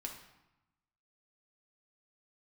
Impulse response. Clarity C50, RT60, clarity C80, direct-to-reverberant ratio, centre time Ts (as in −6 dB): 6.0 dB, 0.95 s, 9.0 dB, 0.5 dB, 27 ms